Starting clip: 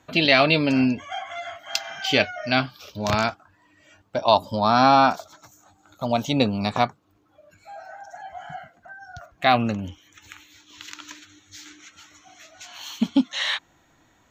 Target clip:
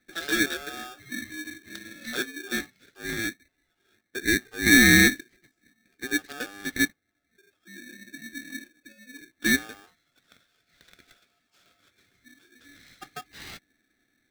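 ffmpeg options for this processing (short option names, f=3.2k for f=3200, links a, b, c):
-filter_complex "[0:a]asettb=1/sr,asplit=3[a][b][c];[a]atrim=end=4.664[d];[b]atrim=start=4.66:end=5.08,asetpts=PTS-STARTPTS,afade=t=in:d=0.004:c=qsin,afade=t=out:st=0.416:d=0.004:c=qsin,aeval=exprs='0.631*sin(PI/2*2*val(0)/0.631)':c=same[e];[c]atrim=start=5.076[f];[d][e]acrossfade=d=0.004:c1=hsin:c2=qsin[g];[g][f]acrossfade=d=0.004:c1=qsin:c2=hsin,asplit=3[h][i][j];[h]bandpass=f=730:t=q:w=8,volume=0dB[k];[i]bandpass=f=1.09k:t=q:w=8,volume=-6dB[l];[j]bandpass=f=2.44k:t=q:w=8,volume=-9dB[m];[k][l][m]amix=inputs=3:normalize=0,aeval=exprs='val(0)*sgn(sin(2*PI*1000*n/s))':c=same"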